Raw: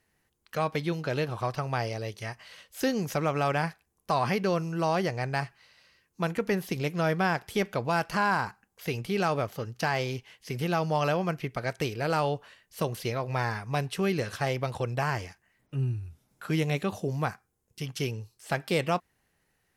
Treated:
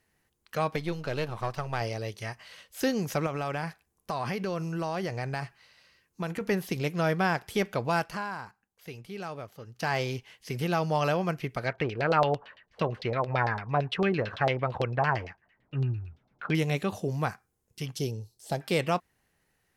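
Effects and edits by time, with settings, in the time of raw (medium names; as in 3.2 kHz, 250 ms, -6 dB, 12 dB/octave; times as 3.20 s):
0.76–1.81 s: partial rectifier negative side -7 dB
3.26–6.41 s: compression 4:1, threshold -28 dBFS
7.98–9.92 s: dip -11 dB, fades 0.37 s quadratic
11.67–16.55 s: LFO low-pass saw down 8.9 Hz 580–4200 Hz
17.96–18.61 s: high-order bell 1.7 kHz -12 dB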